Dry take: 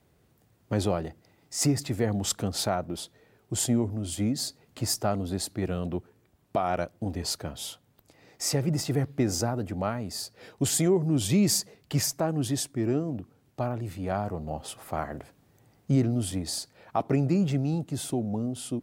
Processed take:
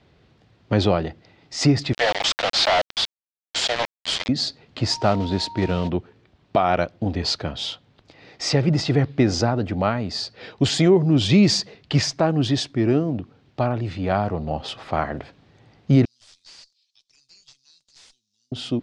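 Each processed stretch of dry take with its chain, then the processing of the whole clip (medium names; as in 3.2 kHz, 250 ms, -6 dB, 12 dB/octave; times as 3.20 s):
1.93–4.29 s: steep high-pass 520 Hz 72 dB/octave + companded quantiser 2-bit
4.90–5.88 s: block-companded coder 5-bit + whistle 930 Hz -43 dBFS
16.05–18.52 s: inverse Chebyshev high-pass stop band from 1.6 kHz, stop band 60 dB + valve stage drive 48 dB, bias 0.3
whole clip: low-pass 4.2 kHz 24 dB/octave; treble shelf 3.2 kHz +10.5 dB; trim +7.5 dB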